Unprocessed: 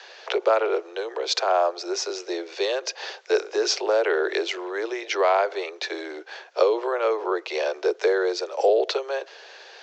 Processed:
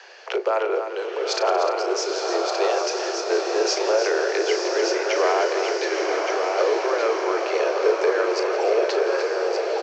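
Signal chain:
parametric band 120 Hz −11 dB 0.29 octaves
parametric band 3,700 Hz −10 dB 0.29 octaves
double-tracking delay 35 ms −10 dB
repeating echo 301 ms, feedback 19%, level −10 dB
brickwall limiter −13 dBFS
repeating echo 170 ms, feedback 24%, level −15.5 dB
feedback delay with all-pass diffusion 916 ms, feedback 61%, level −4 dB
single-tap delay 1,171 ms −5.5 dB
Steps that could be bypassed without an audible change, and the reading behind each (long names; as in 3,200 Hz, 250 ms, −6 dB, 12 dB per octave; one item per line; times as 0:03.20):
parametric band 120 Hz: nothing at its input below 290 Hz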